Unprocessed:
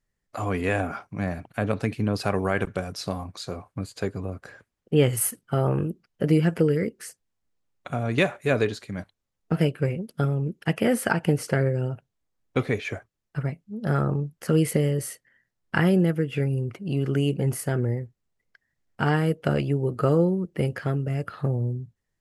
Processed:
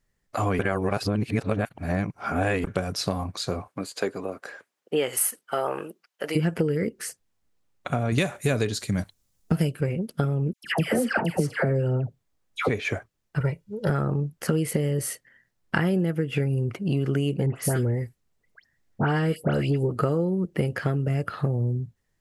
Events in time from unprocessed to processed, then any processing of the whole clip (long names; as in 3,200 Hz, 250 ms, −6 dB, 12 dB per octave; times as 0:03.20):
0:00.59–0:02.64: reverse
0:03.67–0:06.35: high-pass filter 260 Hz → 850 Hz
0:08.12–0:09.81: bass and treble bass +6 dB, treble +12 dB
0:10.53–0:12.69: all-pass dispersion lows, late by 116 ms, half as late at 1,200 Hz
0:13.40–0:13.90: comb filter 2.1 ms, depth 82%
0:17.46–0:19.92: all-pass dispersion highs, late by 103 ms, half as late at 2,500 Hz
whole clip: downward compressor, threshold −26 dBFS; level +5.5 dB